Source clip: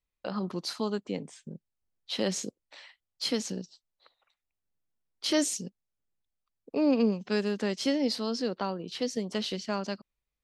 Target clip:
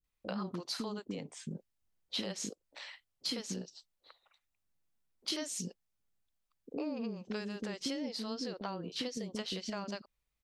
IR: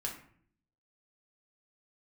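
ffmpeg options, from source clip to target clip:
-filter_complex "[0:a]acompressor=threshold=-36dB:ratio=12,acrossover=split=420[link_01][link_02];[link_02]adelay=40[link_03];[link_01][link_03]amix=inputs=2:normalize=0,volume=2.5dB"

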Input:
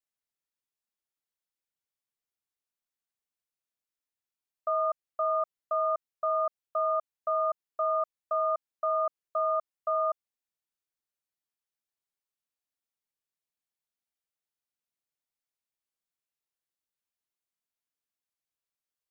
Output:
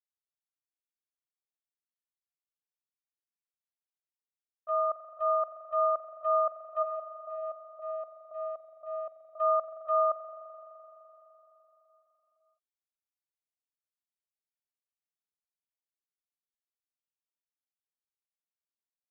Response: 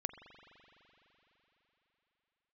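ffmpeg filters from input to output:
-filter_complex "[0:a]asplit=3[link_01][link_02][link_03];[link_01]afade=type=out:start_time=6.82:duration=0.02[link_04];[link_02]lowpass=frequency=1000:width=0.5412,lowpass=frequency=1000:width=1.3066,afade=type=in:start_time=6.82:duration=0.02,afade=type=out:start_time=9.38:duration=0.02[link_05];[link_03]afade=type=in:start_time=9.38:duration=0.02[link_06];[link_04][link_05][link_06]amix=inputs=3:normalize=0,agate=range=-15dB:threshold=-28dB:ratio=16:detection=peak,dynaudnorm=framelen=940:gausssize=9:maxgain=11.5dB[link_07];[1:a]atrim=start_sample=2205[link_08];[link_07][link_08]afir=irnorm=-1:irlink=0,volume=-8.5dB"

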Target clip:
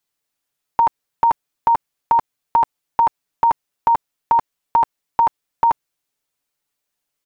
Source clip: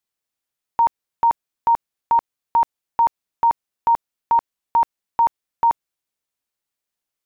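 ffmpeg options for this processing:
ffmpeg -i in.wav -af "aecho=1:1:6.9:0.51,volume=4.5dB" out.wav

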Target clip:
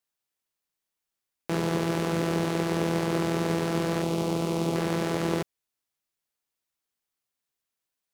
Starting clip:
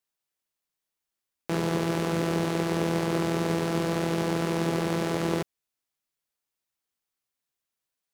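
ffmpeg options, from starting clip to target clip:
ffmpeg -i in.wav -filter_complex "[0:a]asettb=1/sr,asplit=3[link_01][link_02][link_03];[link_01]atrim=end=4.024[link_04];[link_02]atrim=start=4.02:end=4.76,asetpts=PTS-STARTPTS,afade=type=in:duration=0.004:curve=qsin,afade=type=out:start_time=0.736:duration=0.004:curve=qsin,equalizer=frequency=1700:width_type=o:width=0.52:gain=-13.5[link_05];[link_03]atrim=start=4.756[link_06];[link_04][link_05]acrossfade=duration=0.004:curve1=hsin:curve2=qsin[link_07];[link_07][link_06]acrossfade=duration=0.004:curve1=qsin:curve2=hsin" out.wav

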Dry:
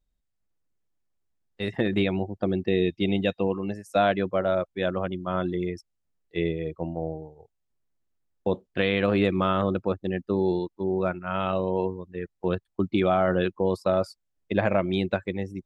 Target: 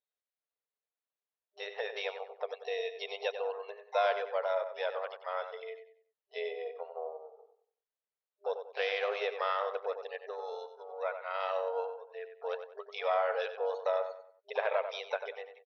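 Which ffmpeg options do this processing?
ffmpeg -i in.wav -filter_complex "[0:a]asplit=2[link_01][link_02];[link_02]adelay=94,lowpass=frequency=2800:poles=1,volume=-8.5dB,asplit=2[link_03][link_04];[link_04]adelay=94,lowpass=frequency=2800:poles=1,volume=0.36,asplit=2[link_05][link_06];[link_06]adelay=94,lowpass=frequency=2800:poles=1,volume=0.36,asplit=2[link_07][link_08];[link_08]adelay=94,lowpass=frequency=2800:poles=1,volume=0.36[link_09];[link_01][link_03][link_05][link_07][link_09]amix=inputs=5:normalize=0,afftfilt=real='re*between(b*sr/4096,400,4400)':imag='im*between(b*sr/4096,400,4400)':win_size=4096:overlap=0.75,asplit=2[link_10][link_11];[link_11]asetrate=66075,aresample=44100,atempo=0.66742,volume=-13dB[link_12];[link_10][link_12]amix=inputs=2:normalize=0,volume=-7dB" out.wav

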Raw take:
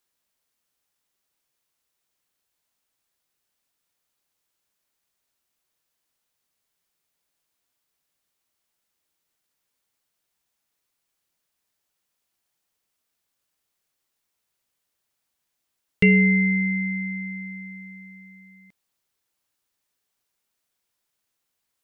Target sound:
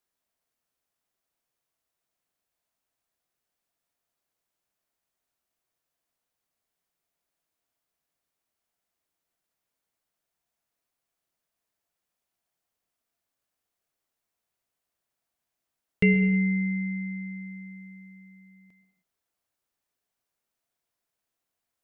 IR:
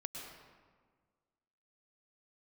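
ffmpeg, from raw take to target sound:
-filter_complex "[0:a]asplit=2[link_01][link_02];[link_02]equalizer=frequency=690:width_type=o:width=0.24:gain=10.5[link_03];[1:a]atrim=start_sample=2205,afade=type=out:start_time=0.38:duration=0.01,atrim=end_sample=17199,lowpass=2500[link_04];[link_03][link_04]afir=irnorm=-1:irlink=0,volume=-2dB[link_05];[link_01][link_05]amix=inputs=2:normalize=0,volume=-7dB"

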